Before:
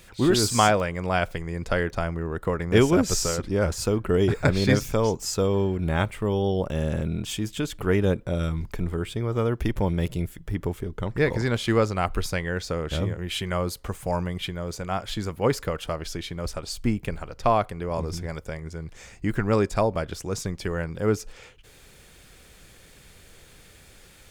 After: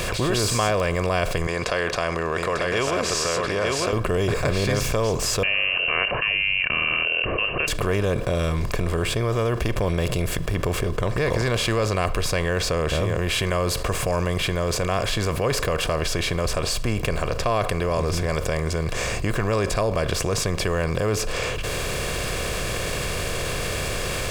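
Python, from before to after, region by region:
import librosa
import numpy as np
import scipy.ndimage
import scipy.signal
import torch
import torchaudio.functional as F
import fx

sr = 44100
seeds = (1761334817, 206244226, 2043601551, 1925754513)

y = fx.chain(x, sr, fx.highpass(hz=1200.0, slope=6),
    fx.air_absorb(metres=74.0),
    fx.echo_single(ms=895, db=-6.0), at=(1.47, 3.93))
y = fx.chain(y, sr, fx.highpass(hz=97.0, slope=12),
    fx.freq_invert(carrier_hz=2900), at=(5.43, 7.68))
y = fx.bin_compress(y, sr, power=0.6)
y = y + 0.45 * np.pad(y, (int(1.8 * sr / 1000.0), 0))[:len(y)]
y = fx.env_flatten(y, sr, amount_pct=70)
y = y * 10.0 ** (-7.5 / 20.0)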